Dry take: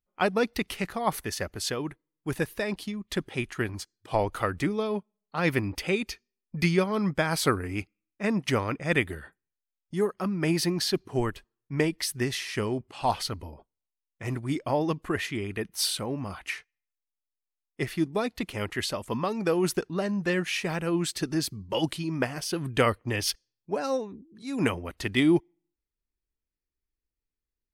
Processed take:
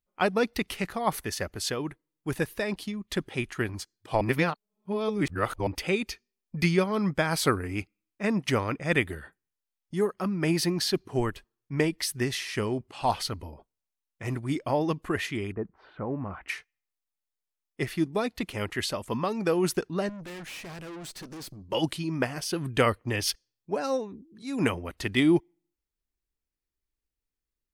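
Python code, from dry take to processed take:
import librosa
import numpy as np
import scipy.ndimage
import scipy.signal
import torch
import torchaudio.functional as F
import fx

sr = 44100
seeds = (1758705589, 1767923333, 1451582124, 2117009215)

y = fx.lowpass(x, sr, hz=fx.line((15.51, 1100.0), (16.48, 2300.0)), slope=24, at=(15.51, 16.48), fade=0.02)
y = fx.tube_stage(y, sr, drive_db=39.0, bias=0.65, at=(20.09, 21.72))
y = fx.edit(y, sr, fx.reverse_span(start_s=4.21, length_s=1.46), tone=tone)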